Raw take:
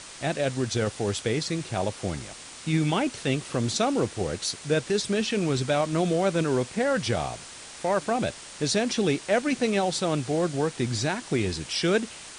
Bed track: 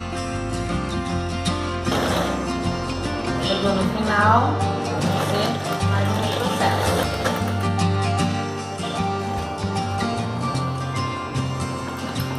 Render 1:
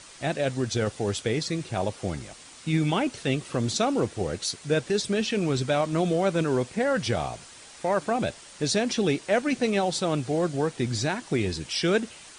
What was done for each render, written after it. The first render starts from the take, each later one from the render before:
broadband denoise 6 dB, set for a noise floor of −43 dBFS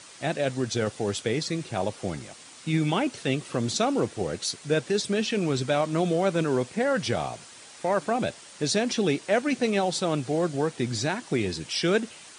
high-pass filter 110 Hz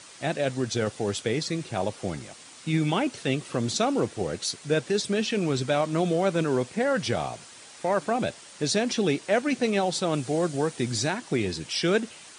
0:10.13–0:11.10: high-shelf EQ 8,000 Hz +9 dB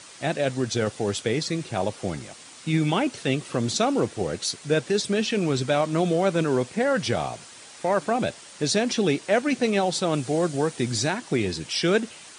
level +2 dB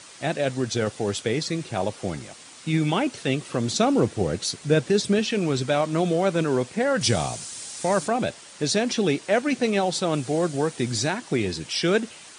0:03.79–0:05.19: low-shelf EQ 290 Hz +7 dB
0:07.01–0:08.08: bass and treble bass +6 dB, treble +12 dB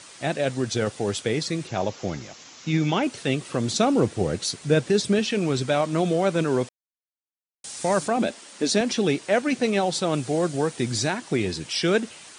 0:01.67–0:03.03: bad sample-rate conversion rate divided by 3×, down none, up filtered
0:06.69–0:07.64: silence
0:08.17–0:08.81: low shelf with overshoot 180 Hz −7 dB, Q 3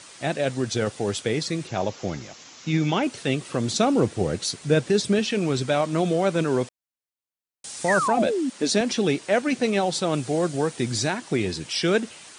0:07.88–0:08.50: sound drawn into the spectrogram fall 240–2,000 Hz −24 dBFS
floating-point word with a short mantissa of 8 bits

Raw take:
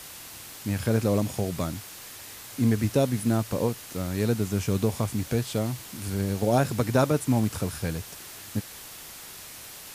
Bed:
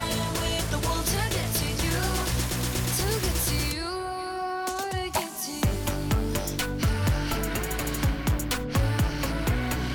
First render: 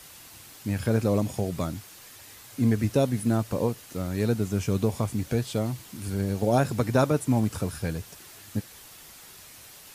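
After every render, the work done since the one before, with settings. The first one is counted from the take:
broadband denoise 6 dB, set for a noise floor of −43 dBFS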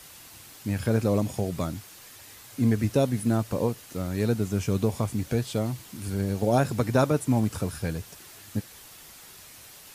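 no processing that can be heard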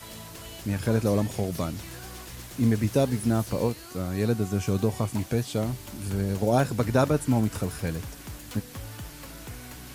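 mix in bed −15.5 dB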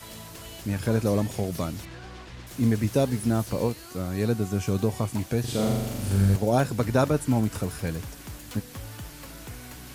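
0:01.85–0:02.47: low-pass filter 3,800 Hz
0:05.40–0:06.36: flutter between parallel walls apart 7.1 metres, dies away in 1.2 s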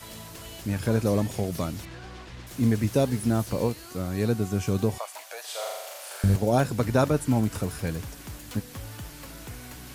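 0:04.98–0:06.24: elliptic high-pass filter 590 Hz, stop band 80 dB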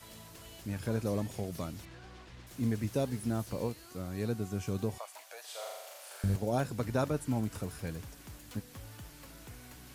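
level −9 dB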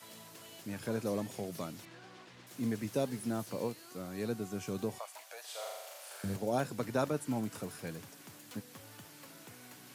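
Bessel high-pass filter 180 Hz, order 8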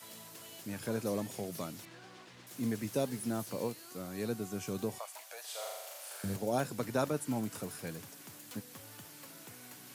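high-shelf EQ 6,800 Hz +5.5 dB

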